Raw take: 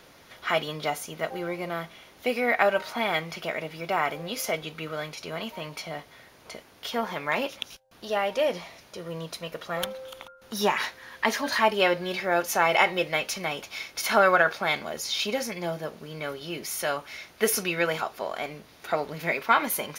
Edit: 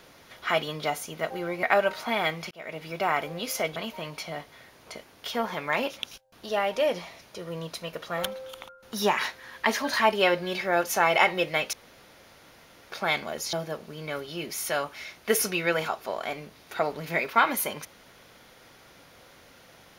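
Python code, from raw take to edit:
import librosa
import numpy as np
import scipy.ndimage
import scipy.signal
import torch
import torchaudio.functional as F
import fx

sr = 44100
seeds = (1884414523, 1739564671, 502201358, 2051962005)

y = fx.edit(x, sr, fx.cut(start_s=1.63, length_s=0.89),
    fx.fade_in_span(start_s=3.4, length_s=0.34),
    fx.cut(start_s=4.65, length_s=0.7),
    fx.room_tone_fill(start_s=13.32, length_s=1.19),
    fx.cut(start_s=15.12, length_s=0.54), tone=tone)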